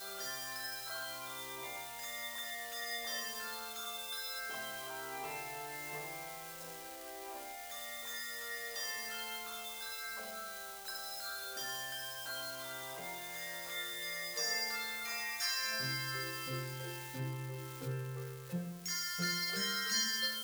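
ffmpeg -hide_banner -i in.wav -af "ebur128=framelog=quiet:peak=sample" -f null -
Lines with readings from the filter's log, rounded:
Integrated loudness:
  I:         -39.1 LUFS
  Threshold: -49.1 LUFS
Loudness range:
  LRA:         5.9 LU
  Threshold: -59.6 LUFS
  LRA low:   -42.4 LUFS
  LRA high:  -36.5 LUFS
Sample peak:
  Peak:      -22.2 dBFS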